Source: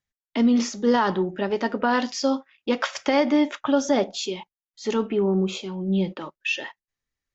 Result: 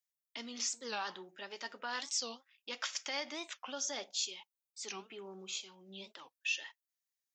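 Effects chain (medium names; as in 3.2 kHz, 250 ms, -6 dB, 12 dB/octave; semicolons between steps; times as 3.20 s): differentiator; warped record 45 rpm, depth 250 cents; trim -1 dB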